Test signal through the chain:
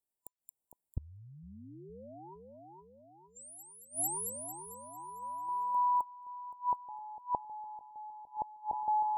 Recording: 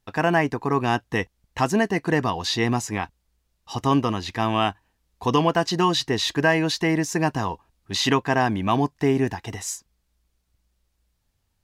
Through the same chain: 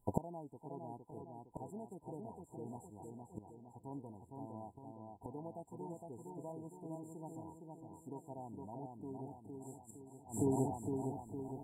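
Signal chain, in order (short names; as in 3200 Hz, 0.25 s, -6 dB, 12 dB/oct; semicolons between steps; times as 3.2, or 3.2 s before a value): split-band echo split 1900 Hz, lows 0.461 s, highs 0.224 s, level -3.5 dB; flipped gate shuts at -22 dBFS, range -28 dB; FFT band-reject 1000–7200 Hz; gain +1 dB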